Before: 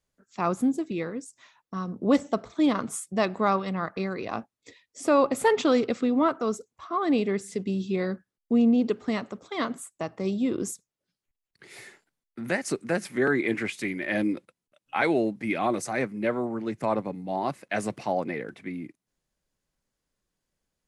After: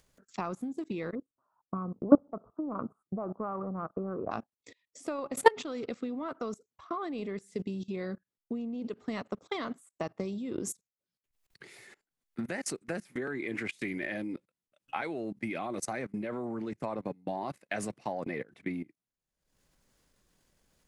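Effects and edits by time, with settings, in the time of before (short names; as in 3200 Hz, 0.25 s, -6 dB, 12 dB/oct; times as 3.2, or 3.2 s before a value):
1.15–4.31 elliptic low-pass 1300 Hz
whole clip: level quantiser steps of 18 dB; transient shaper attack +5 dB, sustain -6 dB; upward compressor, threshold -54 dBFS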